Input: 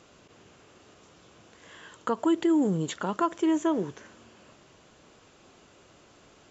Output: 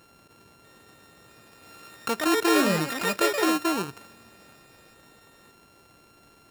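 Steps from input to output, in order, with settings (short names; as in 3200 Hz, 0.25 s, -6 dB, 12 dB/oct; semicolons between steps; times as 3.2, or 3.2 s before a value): sample sorter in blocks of 32 samples; echoes that change speed 0.645 s, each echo +5 st, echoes 2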